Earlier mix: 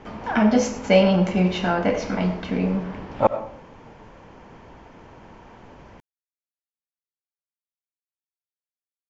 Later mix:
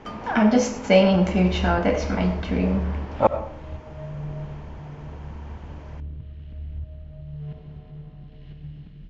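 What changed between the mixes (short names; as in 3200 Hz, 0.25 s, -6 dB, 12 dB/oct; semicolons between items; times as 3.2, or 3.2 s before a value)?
first sound +9.5 dB; second sound: unmuted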